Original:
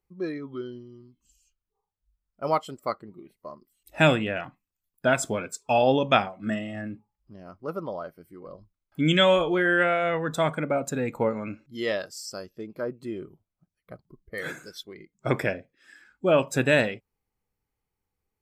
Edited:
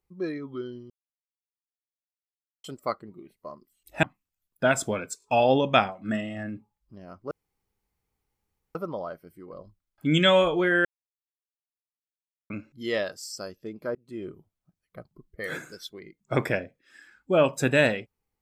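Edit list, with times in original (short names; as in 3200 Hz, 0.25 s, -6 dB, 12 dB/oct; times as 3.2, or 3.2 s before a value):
0.9–2.64 mute
4.03–4.45 cut
5.6 stutter 0.02 s, 3 plays
7.69 insert room tone 1.44 s
9.79–11.44 mute
12.89–13.2 fade in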